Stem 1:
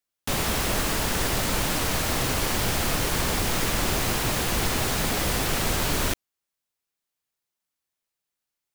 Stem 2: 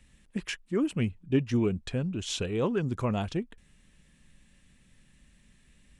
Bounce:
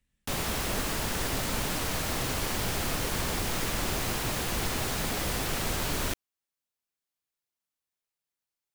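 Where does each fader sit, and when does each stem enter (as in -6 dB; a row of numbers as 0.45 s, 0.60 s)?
-5.5 dB, -18.0 dB; 0.00 s, 0.00 s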